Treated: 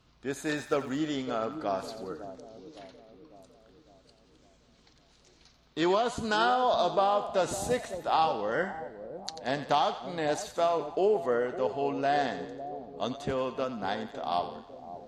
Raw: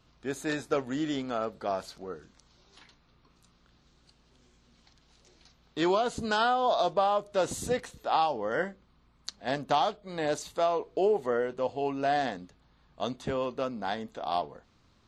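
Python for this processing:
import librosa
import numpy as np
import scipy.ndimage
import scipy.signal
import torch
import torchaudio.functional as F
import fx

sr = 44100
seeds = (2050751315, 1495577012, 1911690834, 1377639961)

y = fx.cheby_harmonics(x, sr, harmonics=(4, 6, 8), levels_db=(-34, -32, -41), full_scale_db=-13.0)
y = fx.dmg_crackle(y, sr, seeds[0], per_s=fx.line((0.56, 270.0), (0.98, 60.0)), level_db=-44.0, at=(0.56, 0.98), fade=0.02)
y = fx.echo_split(y, sr, split_hz=770.0, low_ms=555, high_ms=89, feedback_pct=52, wet_db=-11.0)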